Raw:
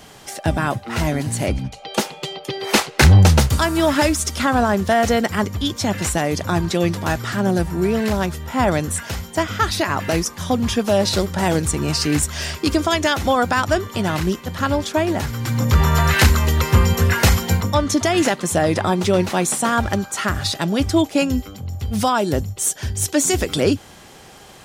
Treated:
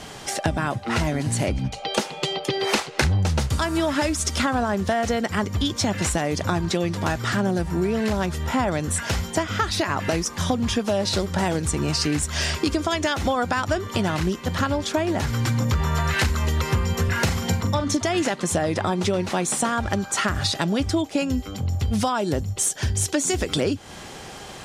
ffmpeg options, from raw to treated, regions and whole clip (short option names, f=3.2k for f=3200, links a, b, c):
-filter_complex "[0:a]asettb=1/sr,asplit=3[a][b][c];[a]atrim=end=17.084[d];[b]atrim=start=17.08:end=17.97,asetpts=PTS-STARTPTS,afade=t=in:d=0.004:c=qsin,afade=t=out:st=0.886:d=0.004:c=qsin,highpass=110,lowshelf=f=150:g=8,asplit=2[e][f];[f]adelay=42,volume=-8dB[g];[e][g]amix=inputs=2:normalize=0,atrim=end_sample=39249[h];[c]atrim=start=17.966[i];[d][h]acrossfade=d=0.004:c1=hsin:c2=qsin[j];[j][i]acrossfade=d=0.004:c1=qsin:c2=hsin,lowpass=9.7k,acompressor=threshold=-25dB:ratio=6,volume=5dB"